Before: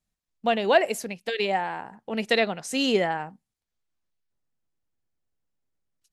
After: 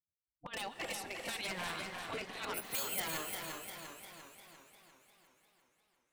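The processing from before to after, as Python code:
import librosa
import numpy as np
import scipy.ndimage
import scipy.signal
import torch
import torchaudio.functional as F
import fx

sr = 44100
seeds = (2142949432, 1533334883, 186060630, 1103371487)

y = fx.bin_expand(x, sr, power=1.5)
y = fx.env_lowpass(y, sr, base_hz=490.0, full_db=-23.5)
y = fx.spec_gate(y, sr, threshold_db=-15, keep='weak')
y = fx.high_shelf(y, sr, hz=2500.0, db=-4.0)
y = fx.over_compress(y, sr, threshold_db=-44.0, ratio=-0.5)
y = 10.0 ** (-39.0 / 20.0) * (np.abs((y / 10.0 ** (-39.0 / 20.0) + 3.0) % 4.0 - 2.0) - 1.0)
y = fx.resample_bad(y, sr, factor=4, down='none', up='zero_stuff', at=(2.54, 3.0))
y = fx.echo_feedback(y, sr, ms=758, feedback_pct=40, wet_db=-23.0)
y = fx.rev_gated(y, sr, seeds[0], gate_ms=420, shape='rising', drr_db=8.0)
y = fx.echo_warbled(y, sr, ms=349, feedback_pct=57, rate_hz=2.8, cents=59, wet_db=-5.5)
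y = F.gain(torch.from_numpy(y), 5.0).numpy()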